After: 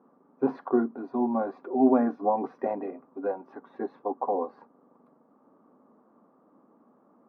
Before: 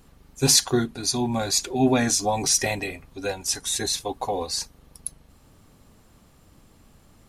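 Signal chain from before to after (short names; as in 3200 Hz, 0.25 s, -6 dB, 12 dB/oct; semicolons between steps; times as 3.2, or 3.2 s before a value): elliptic band-pass 230–1200 Hz, stop band 70 dB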